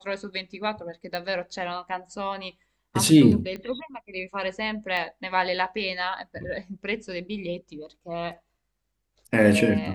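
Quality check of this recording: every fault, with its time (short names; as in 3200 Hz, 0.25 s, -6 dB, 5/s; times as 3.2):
1.15 pop -18 dBFS
3.56 pop -23 dBFS
4.97 gap 3.2 ms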